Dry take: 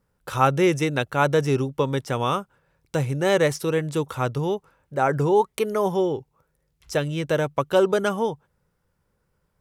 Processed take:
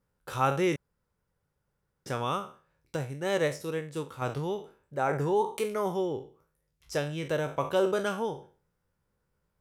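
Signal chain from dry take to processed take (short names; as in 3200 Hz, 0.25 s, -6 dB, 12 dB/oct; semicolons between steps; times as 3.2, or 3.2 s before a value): spectral trails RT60 0.39 s; 0.76–2.06 room tone; 2.96–4.22 upward expander 1.5:1, over -29 dBFS; gain -8 dB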